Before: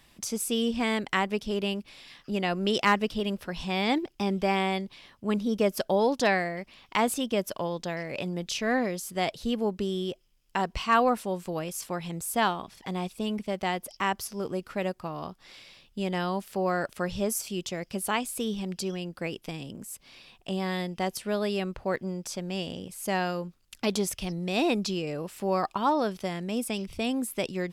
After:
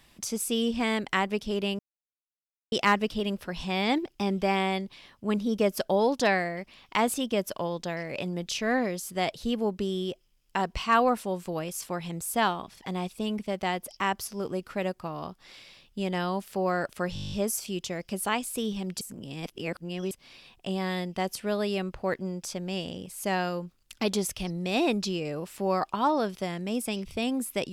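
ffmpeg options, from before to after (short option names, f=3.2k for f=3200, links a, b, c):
-filter_complex "[0:a]asplit=14[a][b][c][d][e][f][g][h][i][j][k][l][m][n];[a]atrim=end=1.79,asetpts=PTS-STARTPTS,afade=t=out:st=1.786:d=0.004:c=hsin[o];[b]atrim=start=1.79:end=2.72,asetpts=PTS-STARTPTS,volume=0[p];[c]atrim=start=2.72:end=17.162,asetpts=PTS-STARTPTS,afade=t=in:d=0.004:c=hsin[q];[d]atrim=start=17.138:end=17.162[r];[e]atrim=start=17.138:end=17.162[s];[f]atrim=start=17.138:end=17.162[t];[g]atrim=start=17.138:end=17.162[u];[h]atrim=start=17.138:end=17.162[v];[i]atrim=start=17.138:end=17.162[w];[j]atrim=start=17.138:end=17.162[x];[k]atrim=start=17.138:end=17.162[y];[l]atrim=start=17.138:end=18.832[z];[m]atrim=start=18.828:end=19.932,asetpts=PTS-STARTPTS,areverse[aa];[n]atrim=start=19.928[ab];[o][p][q]concat=n=3:v=0:a=1[ac];[ac][r]acrossfade=d=0.004:c1=hsin:c2=hsin[ad];[ad][s]acrossfade=d=0.004:c1=hsin:c2=hsin[ae];[ae][t]acrossfade=d=0.004:c1=hsin:c2=hsin[af];[af][u]acrossfade=d=0.004:c1=hsin:c2=hsin[ag];[ag][v]acrossfade=d=0.004:c1=hsin:c2=hsin[ah];[ah][w]acrossfade=d=0.004:c1=hsin:c2=hsin[ai];[ai][x]acrossfade=d=0.004:c1=hsin:c2=hsin[aj];[aj][y]acrossfade=d=0.004:c1=hsin:c2=hsin[ak];[ak][z]acrossfade=d=0.004:c1=hsin:c2=hsin[al];[al][aa]acrossfade=d=0.004:c1=hsin:c2=hsin[am];[am][ab]acrossfade=d=0.004:c1=hsin:c2=hsin"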